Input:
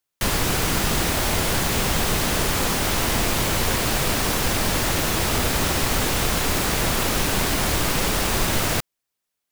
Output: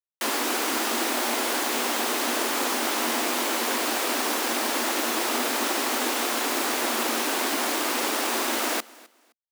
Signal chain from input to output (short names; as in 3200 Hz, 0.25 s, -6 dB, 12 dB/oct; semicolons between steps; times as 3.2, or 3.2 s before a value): rippled Chebyshev high-pass 230 Hz, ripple 3 dB; crossover distortion -50.5 dBFS; feedback echo 0.259 s, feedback 23%, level -22.5 dB